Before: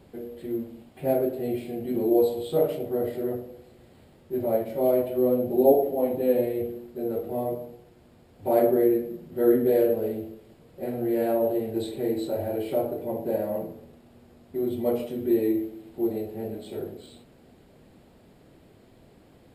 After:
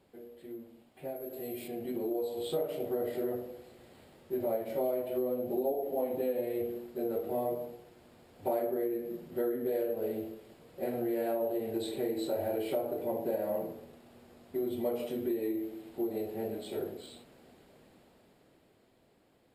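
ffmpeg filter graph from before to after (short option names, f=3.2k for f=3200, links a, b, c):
-filter_complex "[0:a]asettb=1/sr,asplit=3[a][b][c];[a]atrim=end=1.164[d];[b]atrim=start=1.16:end=1.68,asetpts=PTS-STARTPTS,afade=t=in:d=0.004:c=qsin,afade=t=out:st=0.516:d=0.004:c=qsin,aemphasis=mode=production:type=50kf,acompressor=threshold=-32dB:ratio=1.5:attack=3.2:release=140:knee=1:detection=peak[e];[c]atrim=start=1.676[f];[d][e]acrossfade=d=0.004:c1=hsin:c2=qsin[g];[g][f]acrossfade=d=0.004:c1=qsin:c2=hsin,acompressor=threshold=-27dB:ratio=12,lowshelf=f=240:g=-10,dynaudnorm=f=110:g=31:m=10dB,volume=-9dB"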